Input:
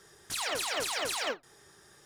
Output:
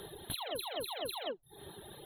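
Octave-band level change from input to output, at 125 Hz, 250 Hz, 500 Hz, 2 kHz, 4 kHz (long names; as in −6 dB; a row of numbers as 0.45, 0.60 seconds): +3.5, −1.5, −3.0, −13.5, −6.0 decibels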